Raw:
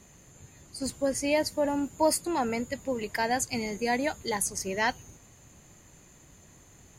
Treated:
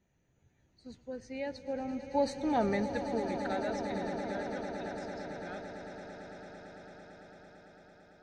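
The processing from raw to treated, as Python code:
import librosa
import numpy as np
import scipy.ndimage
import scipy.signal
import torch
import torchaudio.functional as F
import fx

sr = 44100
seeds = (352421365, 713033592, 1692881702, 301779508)

p1 = fx.speed_glide(x, sr, from_pct=94, to_pct=76)
p2 = fx.doppler_pass(p1, sr, speed_mps=7, closest_m=2.4, pass_at_s=2.65)
p3 = fx.air_absorb(p2, sr, metres=200.0)
p4 = fx.notch(p3, sr, hz=1100.0, q=5.7)
y = p4 + fx.echo_swell(p4, sr, ms=112, loudest=8, wet_db=-13.5, dry=0)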